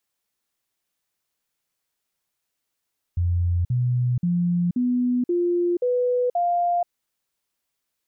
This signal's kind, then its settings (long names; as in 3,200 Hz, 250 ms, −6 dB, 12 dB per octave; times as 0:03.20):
stepped sweep 87.4 Hz up, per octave 2, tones 7, 0.48 s, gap 0.05 s −18.5 dBFS